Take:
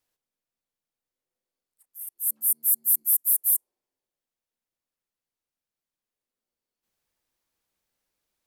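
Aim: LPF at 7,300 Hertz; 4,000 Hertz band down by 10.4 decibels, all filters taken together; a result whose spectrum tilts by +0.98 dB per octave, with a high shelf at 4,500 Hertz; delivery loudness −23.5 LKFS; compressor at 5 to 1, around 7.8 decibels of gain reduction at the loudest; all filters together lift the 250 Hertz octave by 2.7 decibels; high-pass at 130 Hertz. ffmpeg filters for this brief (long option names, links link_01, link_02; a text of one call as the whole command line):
ffmpeg -i in.wav -af "highpass=130,lowpass=7300,equalizer=frequency=250:width_type=o:gain=3.5,equalizer=frequency=4000:width_type=o:gain=-8.5,highshelf=frequency=4500:gain=-7.5,acompressor=threshold=-42dB:ratio=5,volume=23.5dB" out.wav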